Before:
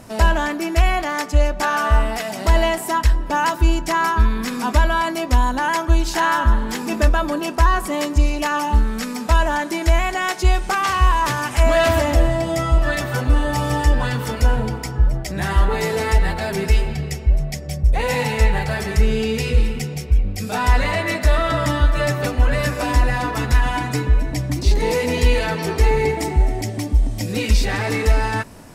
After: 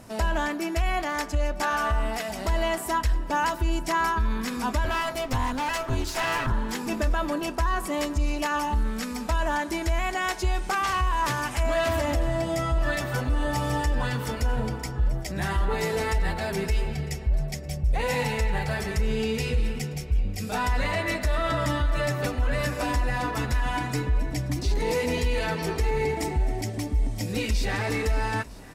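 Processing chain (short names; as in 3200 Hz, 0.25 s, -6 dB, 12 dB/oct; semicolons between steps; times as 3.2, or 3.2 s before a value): 4.84–6.52 minimum comb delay 7.7 ms; limiter -11 dBFS, peak gain reduction 6 dB; echo 0.953 s -21.5 dB; gain -5.5 dB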